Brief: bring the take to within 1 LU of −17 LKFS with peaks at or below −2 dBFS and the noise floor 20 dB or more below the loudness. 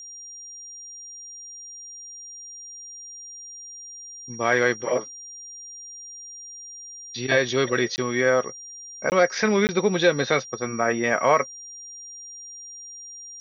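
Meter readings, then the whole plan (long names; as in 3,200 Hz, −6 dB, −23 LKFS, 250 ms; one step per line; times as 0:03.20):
number of dropouts 3; longest dropout 19 ms; interfering tone 5,700 Hz; level of the tone −38 dBFS; integrated loudness −22.5 LKFS; sample peak −6.5 dBFS; target loudness −17.0 LKFS
→ repair the gap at 0:07.96/0:09.10/0:09.67, 19 ms
notch filter 5,700 Hz, Q 30
level +5.5 dB
brickwall limiter −2 dBFS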